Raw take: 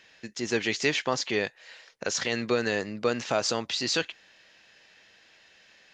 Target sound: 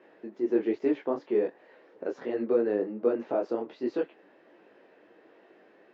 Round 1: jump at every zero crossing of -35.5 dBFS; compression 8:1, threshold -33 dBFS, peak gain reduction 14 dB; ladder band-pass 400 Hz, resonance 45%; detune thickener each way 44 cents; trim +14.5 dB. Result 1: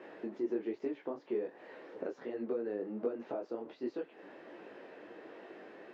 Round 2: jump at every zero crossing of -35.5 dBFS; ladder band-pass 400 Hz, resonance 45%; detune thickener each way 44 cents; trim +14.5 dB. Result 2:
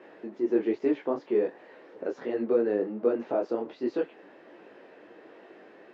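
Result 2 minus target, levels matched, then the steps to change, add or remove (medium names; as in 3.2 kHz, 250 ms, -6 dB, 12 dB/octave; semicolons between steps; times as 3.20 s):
jump at every zero crossing: distortion +7 dB
change: jump at every zero crossing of -43.5 dBFS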